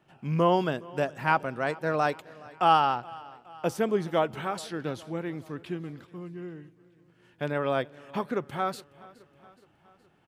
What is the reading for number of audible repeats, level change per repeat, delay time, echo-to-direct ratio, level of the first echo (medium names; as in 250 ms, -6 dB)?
3, -5.0 dB, 420 ms, -20.5 dB, -22.0 dB